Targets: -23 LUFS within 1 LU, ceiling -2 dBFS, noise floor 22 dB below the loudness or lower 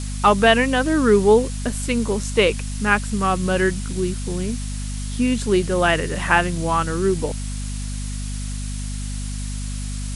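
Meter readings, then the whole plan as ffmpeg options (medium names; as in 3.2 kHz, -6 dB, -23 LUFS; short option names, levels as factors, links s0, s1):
hum 50 Hz; highest harmonic 250 Hz; hum level -25 dBFS; noise floor -28 dBFS; noise floor target -43 dBFS; loudness -21.0 LUFS; peak level -2.0 dBFS; loudness target -23.0 LUFS
-> -af "bandreject=f=50:t=h:w=6,bandreject=f=100:t=h:w=6,bandreject=f=150:t=h:w=6,bandreject=f=200:t=h:w=6,bandreject=f=250:t=h:w=6"
-af "afftdn=nr=15:nf=-28"
-af "volume=0.794"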